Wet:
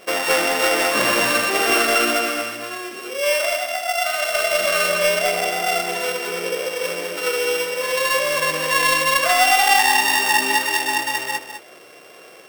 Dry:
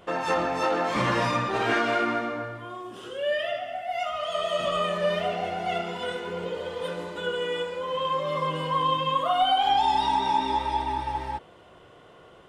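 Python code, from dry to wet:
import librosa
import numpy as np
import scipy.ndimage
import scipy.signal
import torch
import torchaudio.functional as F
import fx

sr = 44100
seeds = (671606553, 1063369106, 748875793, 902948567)

p1 = np.r_[np.sort(x[:len(x) // 16 * 16].reshape(-1, 16), axis=1).ravel(), x[len(x) // 16 * 16:]]
p2 = scipy.signal.sosfilt(scipy.signal.butter(2, 330.0, 'highpass', fs=sr, output='sos'), p1)
p3 = fx.notch(p2, sr, hz=920.0, q=7.5)
p4 = 10.0 ** (-21.5 / 20.0) * np.tanh(p3 / 10.0 ** (-21.5 / 20.0))
p5 = p3 + (p4 * librosa.db_to_amplitude(-3.0))
p6 = fx.vibrato(p5, sr, rate_hz=2.0, depth_cents=8.0)
p7 = p6 + fx.echo_single(p6, sr, ms=205, db=-9.0, dry=0)
y = p7 * librosa.db_to_amplitude(3.5)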